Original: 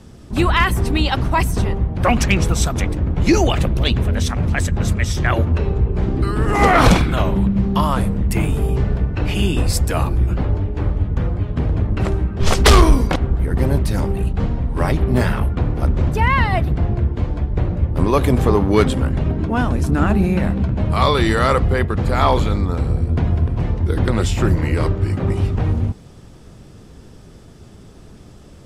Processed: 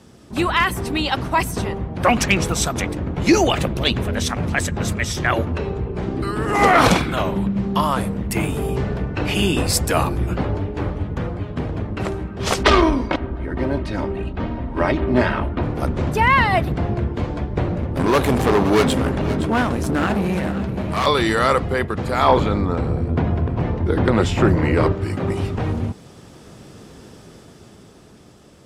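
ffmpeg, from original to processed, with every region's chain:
ffmpeg -i in.wav -filter_complex "[0:a]asettb=1/sr,asplit=3[link_01][link_02][link_03];[link_01]atrim=end=12.634[link_04];[link_02]atrim=start=12.63:end=15.63,asetpts=PTS-STARTPTS,afade=type=in:duration=0.004:curve=qsin,afade=type=out:start_time=2.996:duration=0.004:curve=qsin,lowpass=3500,aecho=1:1:3.2:0.45,atrim=end_sample=132300[link_05];[link_03]atrim=start=15.626[link_06];[link_04][link_05]acrossfade=duration=0.004:curve1=hsin:curve2=qsin[link_07];[link_07][link_06]acrossfade=duration=0.004:curve1=qsin:curve2=hsin,asettb=1/sr,asplit=3[link_08][link_09][link_10];[link_08]atrim=end=17.774[link_11];[link_09]atrim=start=17.77:end=21.06,asetpts=PTS-STARTPTS,afade=type=in:duration=0.004:curve=qsin,afade=type=out:start_time=3.286:duration=0.004:curve=qsin,asoftclip=type=hard:threshold=-15.5dB,aecho=1:1:517:0.251,atrim=end_sample=145089[link_12];[link_10]atrim=start=21.056[link_13];[link_11][link_12]acrossfade=duration=0.004:curve1=hsin:curve2=qsin[link_14];[link_14][link_13]acrossfade=duration=0.004:curve1=qsin:curve2=hsin,asettb=1/sr,asplit=3[link_15][link_16][link_17];[link_15]atrim=end=22.284[link_18];[link_16]atrim=start=22.28:end=24.92,asetpts=PTS-STARTPTS,afade=type=in:duration=0.004:curve=qsin,afade=type=out:start_time=2.636:duration=0.004:curve=qsin,lowpass=frequency=2000:poles=1,acontrast=34[link_19];[link_17]atrim=start=24.916[link_20];[link_18][link_19]acrossfade=duration=0.004:curve1=hsin:curve2=qsin[link_21];[link_21][link_20]acrossfade=duration=0.004:curve1=qsin:curve2=hsin,highpass=frequency=220:poles=1,dynaudnorm=framelen=180:gausssize=17:maxgain=7.5dB,volume=-1dB" out.wav

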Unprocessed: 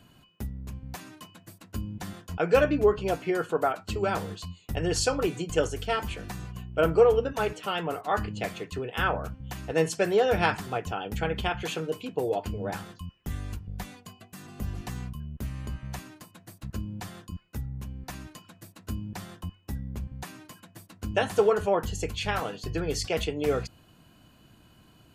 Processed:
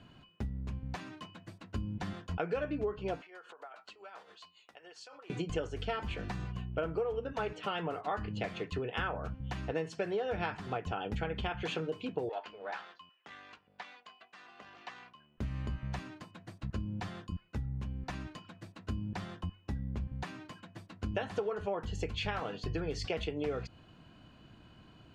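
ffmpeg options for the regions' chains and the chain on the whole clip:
ffmpeg -i in.wav -filter_complex "[0:a]asettb=1/sr,asplit=3[link_01][link_02][link_03];[link_01]atrim=end=3.214[link_04];[link_02]atrim=start=3.21:end=5.3,asetpts=PTS-STARTPTS,afade=type=in:duration=0.004:curve=qsin,afade=type=out:start_time=2.086:duration=0.004:curve=qsin,acompressor=threshold=-41dB:ratio=5:attack=3.2:release=140:knee=1:detection=peak,tremolo=f=7.2:d=0.56,highpass=720[link_05];[link_03]atrim=start=5.296[link_06];[link_04][link_05]acrossfade=duration=0.004:curve1=hsin:curve2=qsin[link_07];[link_07][link_06]acrossfade=duration=0.004:curve1=qsin:curve2=hsin,asettb=1/sr,asplit=3[link_08][link_09][link_10];[link_08]atrim=end=12.294[link_11];[link_09]atrim=start=12.29:end=15.38,asetpts=PTS-STARTPTS,afade=type=in:duration=0.004:curve=qsin,afade=type=out:start_time=3.086:duration=0.004:curve=qsin,aeval=exprs='if(lt(val(0),0),0.708*val(0),val(0))':channel_layout=same,highpass=790,lowpass=4600[link_12];[link_10]atrim=start=15.376[link_13];[link_11][link_12]acrossfade=duration=0.004:curve1=hsin:curve2=qsin[link_14];[link_14][link_13]acrossfade=duration=0.004:curve1=qsin:curve2=hsin,lowpass=3900,acompressor=threshold=-32dB:ratio=6" out.wav

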